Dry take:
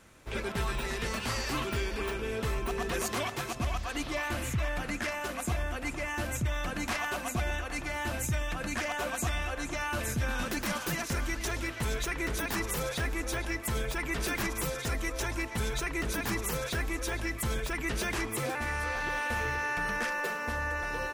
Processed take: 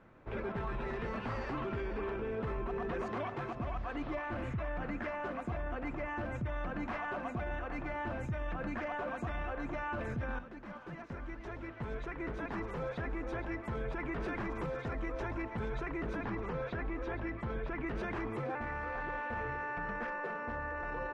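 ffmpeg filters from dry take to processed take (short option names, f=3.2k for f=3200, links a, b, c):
-filter_complex "[0:a]asettb=1/sr,asplit=3[a][b][c];[a]atrim=end=16.244[d];[b]atrim=start=16.24:end=17.86,asetpts=PTS-STARTPTS,afade=t=in:d=0.004:c=qsin,afade=t=out:st=1.616:d=0.004:c=qsin,lowpass=4.7k[e];[c]atrim=start=17.856[f];[d][e]acrossfade=d=0.004:c1=hsin:c2=qsin[g];[g][f]acrossfade=d=0.004:c1=qsin:c2=hsin,asplit=2[h][i];[h]atrim=end=10.39,asetpts=PTS-STARTPTS,afade=t=out:st=10.386:d=0.004:c=hsin:silence=0.177828[j];[i]atrim=start=10.39,asetpts=PTS-STARTPTS,afade=t=in:d=3.35:silence=0.177828[k];[j][k]concat=n=2:v=0:a=1,lowpass=1.4k,equalizer=f=64:t=o:w=0.39:g=-12.5,alimiter=level_in=6dB:limit=-24dB:level=0:latency=1:release=13,volume=-6dB"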